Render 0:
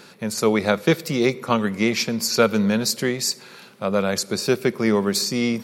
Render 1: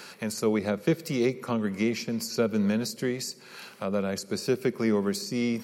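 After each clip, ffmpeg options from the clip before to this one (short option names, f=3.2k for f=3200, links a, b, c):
-filter_complex "[0:a]lowshelf=f=490:g=-10,bandreject=f=3.6k:w=9.7,acrossover=split=440[a][b];[b]acompressor=threshold=-39dB:ratio=5[c];[a][c]amix=inputs=2:normalize=0,volume=3.5dB"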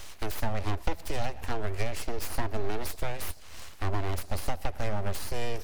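-af "aeval=exprs='abs(val(0))':c=same,acompressor=threshold=-26dB:ratio=6,lowshelf=f=110:t=q:w=3:g=6.5,volume=1dB"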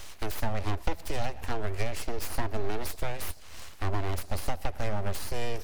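-af anull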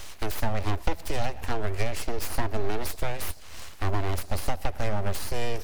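-af "acrusher=bits=9:dc=4:mix=0:aa=0.000001,volume=3dB"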